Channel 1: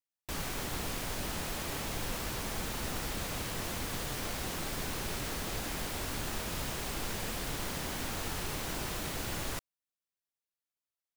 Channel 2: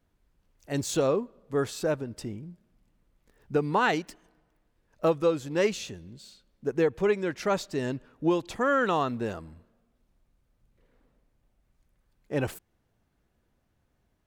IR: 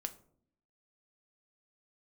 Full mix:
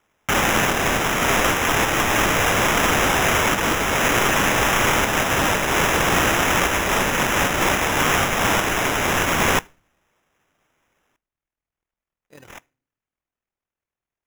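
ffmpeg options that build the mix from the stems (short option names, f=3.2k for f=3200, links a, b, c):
-filter_complex "[0:a]volume=-1.5dB,asplit=2[a][b];[b]volume=-4dB[c];[1:a]agate=range=-10dB:threshold=-55dB:ratio=16:detection=peak,acompressor=threshold=-28dB:ratio=6,tremolo=f=40:d=0.71,volume=-15.5dB,asplit=3[d][e][f];[e]volume=-6dB[g];[f]apad=whole_len=492223[h];[a][h]sidechaincompress=threshold=-49dB:ratio=8:attack=7.8:release=177[i];[2:a]atrim=start_sample=2205[j];[c][g]amix=inputs=2:normalize=0[k];[k][j]afir=irnorm=-1:irlink=0[l];[i][d][l]amix=inputs=3:normalize=0,highshelf=f=2.1k:g=12,crystalizer=i=2:c=0,acrusher=samples=10:mix=1:aa=0.000001"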